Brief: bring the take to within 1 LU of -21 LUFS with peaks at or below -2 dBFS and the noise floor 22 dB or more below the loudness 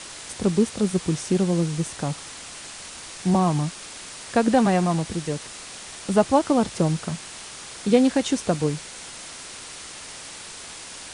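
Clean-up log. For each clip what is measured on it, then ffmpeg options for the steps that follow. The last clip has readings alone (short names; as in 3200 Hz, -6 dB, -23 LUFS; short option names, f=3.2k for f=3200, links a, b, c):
noise floor -40 dBFS; noise floor target -46 dBFS; loudness -23.5 LUFS; peak -6.0 dBFS; loudness target -21.0 LUFS
-> -af "afftdn=nr=6:nf=-40"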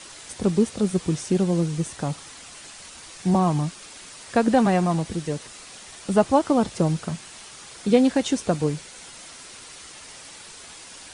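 noise floor -43 dBFS; noise floor target -45 dBFS
-> -af "afftdn=nr=6:nf=-43"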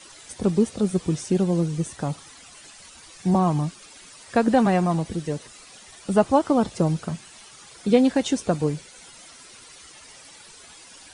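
noise floor -47 dBFS; loudness -23.0 LUFS; peak -6.0 dBFS; loudness target -21.0 LUFS
-> -af "volume=2dB"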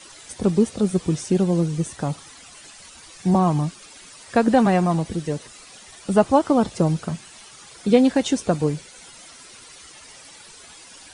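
loudness -21.0 LUFS; peak -4.0 dBFS; noise floor -45 dBFS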